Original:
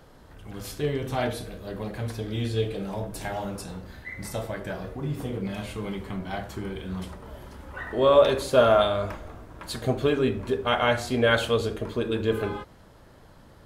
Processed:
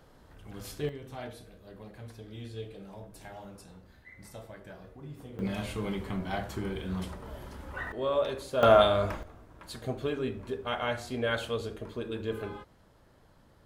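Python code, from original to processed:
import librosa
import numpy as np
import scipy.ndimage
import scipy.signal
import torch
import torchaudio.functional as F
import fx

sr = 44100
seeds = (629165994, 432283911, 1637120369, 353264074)

y = fx.gain(x, sr, db=fx.steps((0.0, -5.5), (0.89, -14.0), (5.39, -1.0), (7.92, -11.0), (8.63, 0.0), (9.23, -9.0)))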